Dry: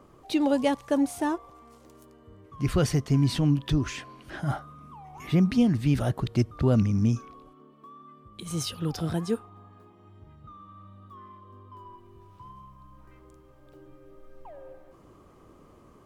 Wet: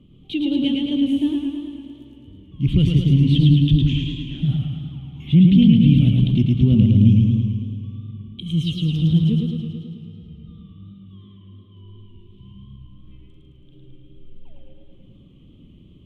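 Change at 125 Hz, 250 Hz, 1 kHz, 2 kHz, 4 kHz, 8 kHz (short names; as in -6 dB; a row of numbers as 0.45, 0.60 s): +11.5 dB, +9.5 dB, under -15 dB, n/a, +9.0 dB, under -10 dB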